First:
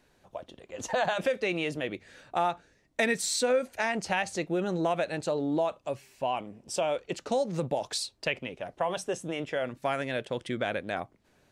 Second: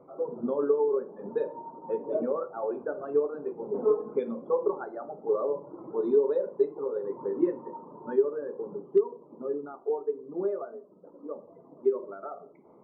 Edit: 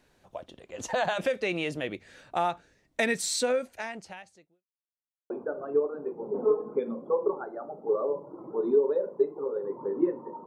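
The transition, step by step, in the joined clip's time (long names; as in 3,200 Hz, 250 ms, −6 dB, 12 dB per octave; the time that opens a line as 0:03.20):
first
0:03.44–0:04.65: fade out quadratic
0:04.65–0:05.30: silence
0:05.30: continue with second from 0:02.70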